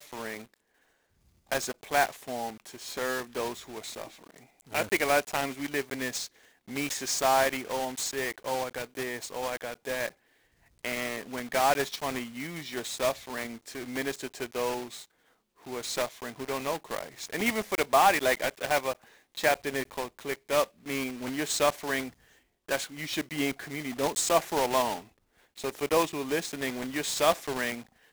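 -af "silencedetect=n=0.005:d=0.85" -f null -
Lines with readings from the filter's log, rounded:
silence_start: 0.54
silence_end: 1.52 | silence_duration: 0.98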